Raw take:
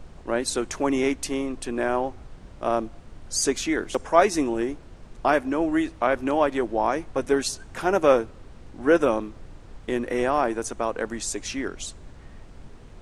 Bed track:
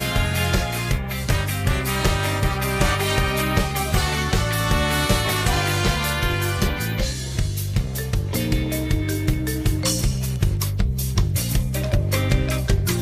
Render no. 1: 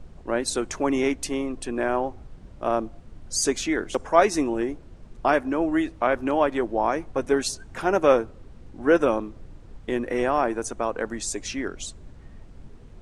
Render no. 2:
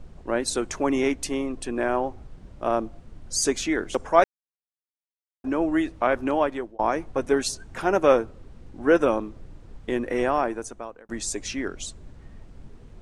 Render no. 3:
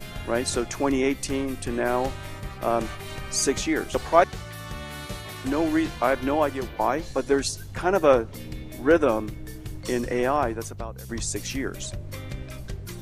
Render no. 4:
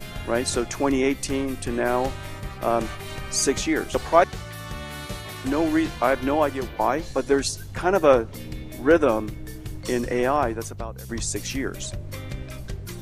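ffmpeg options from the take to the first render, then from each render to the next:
-af "afftdn=nr=6:nf=-46"
-filter_complex "[0:a]asplit=5[a][b][c][d][e];[a]atrim=end=4.24,asetpts=PTS-STARTPTS,afade=t=out:st=4.236:d=0.004:c=hsin[f];[b]atrim=start=4.24:end=5.44,asetpts=PTS-STARTPTS,volume=0[g];[c]atrim=start=5.44:end=6.79,asetpts=PTS-STARTPTS,afade=t=in:d=0.004:c=hsin,afade=t=out:st=0.77:d=0.58:c=qsin[h];[d]atrim=start=6.79:end=11.09,asetpts=PTS-STARTPTS,afade=t=in:d=0.004:c=hsin,afade=t=out:st=3.51:d=0.79[i];[e]atrim=start=11.09,asetpts=PTS-STARTPTS,afade=t=in:d=0.004:c=hsin[j];[f][g][h][i][j]concat=n=5:v=0:a=1"
-filter_complex "[1:a]volume=-16dB[a];[0:a][a]amix=inputs=2:normalize=0"
-af "volume=1.5dB,alimiter=limit=-3dB:level=0:latency=1"

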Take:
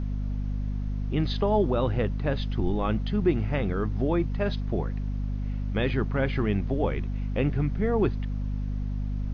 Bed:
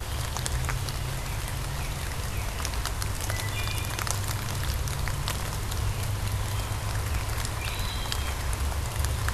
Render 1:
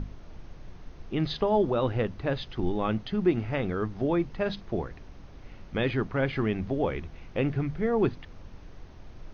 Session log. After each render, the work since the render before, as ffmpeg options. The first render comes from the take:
-af "bandreject=f=50:t=h:w=6,bandreject=f=100:t=h:w=6,bandreject=f=150:t=h:w=6,bandreject=f=200:t=h:w=6,bandreject=f=250:t=h:w=6"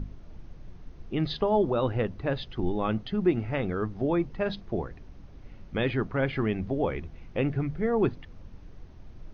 -af "afftdn=nr=6:nf=-47"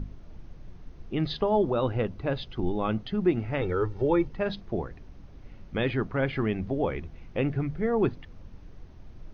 -filter_complex "[0:a]asettb=1/sr,asplit=3[a][b][c];[a]atrim=end=1.854[d];[b]atrim=start=1.85:end=2.98,asetpts=PTS-STARTPTS,afade=t=in:d=0.004:c=qsin,afade=t=out:st=1.126:d=0.004:c=qsin,bandreject=f=1.8k:w=12[e];[c]atrim=start=2.976[f];[d][e]acrossfade=d=0.004:c1=hsin:c2=qsin[g];[g][f]acrossfade=d=0.004:c1=qsin:c2=hsin,asettb=1/sr,asplit=3[h][i][j];[h]atrim=end=3.614[k];[i]atrim=start=3.61:end=4.28,asetpts=PTS-STARTPTS,afade=t=in:d=0.004:c=qsin,afade=t=out:st=0.666:d=0.004:c=qsin,aecho=1:1:2.2:0.88,atrim=end_sample=29547[l];[j]atrim=start=4.276[m];[k][l]acrossfade=d=0.004:c1=hsin:c2=qsin[n];[n][m]acrossfade=d=0.004:c1=qsin:c2=hsin"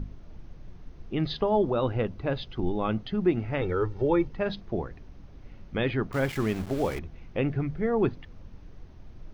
-filter_complex "[0:a]asettb=1/sr,asplit=3[a][b][c];[a]atrim=end=6.124[d];[b]atrim=start=6.12:end=6.99,asetpts=PTS-STARTPTS,afade=t=in:d=0.004:c=qsin,afade=t=out:st=0.866:d=0.004:c=qsin,aeval=exprs='val(0)*gte(abs(val(0)),0.0158)':c=same[e];[c]atrim=start=6.986[f];[d][e]acrossfade=d=0.004:c1=hsin:c2=qsin[g];[g][f]acrossfade=d=0.004:c1=qsin:c2=hsin"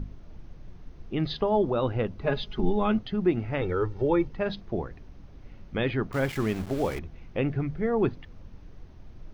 -filter_complex "[0:a]asettb=1/sr,asplit=3[a][b][c];[a]atrim=end=2.214[d];[b]atrim=start=2.21:end=2.99,asetpts=PTS-STARTPTS,afade=t=in:d=0.004:c=qsin,afade=t=out:st=0.776:d=0.004:c=qsin,aecho=1:1:4.8:0.96,atrim=end_sample=34398[e];[c]atrim=start=2.986[f];[d][e]acrossfade=d=0.004:c1=hsin:c2=qsin[g];[g][f]acrossfade=d=0.004:c1=qsin:c2=hsin"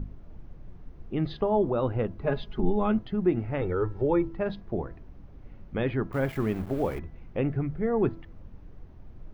-af "equalizer=f=5.5k:w=0.5:g=-11,bandreject=f=331.3:t=h:w=4,bandreject=f=662.6:t=h:w=4,bandreject=f=993.9:t=h:w=4,bandreject=f=1.3252k:t=h:w=4,bandreject=f=1.6565k:t=h:w=4,bandreject=f=1.9878k:t=h:w=4"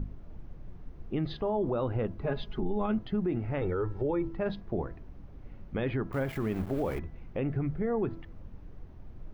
-af "alimiter=limit=-22dB:level=0:latency=1:release=66"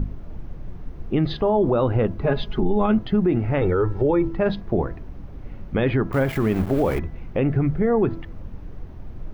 -af "volume=10.5dB"

